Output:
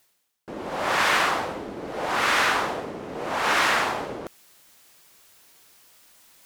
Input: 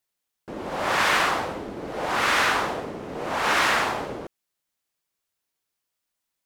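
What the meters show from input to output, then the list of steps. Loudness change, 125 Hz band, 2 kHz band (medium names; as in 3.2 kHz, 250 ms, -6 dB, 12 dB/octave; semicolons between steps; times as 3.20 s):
-0.5 dB, -2.0 dB, 0.0 dB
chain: bass shelf 130 Hz -4.5 dB; reverse; upward compressor, threshold -33 dBFS; reverse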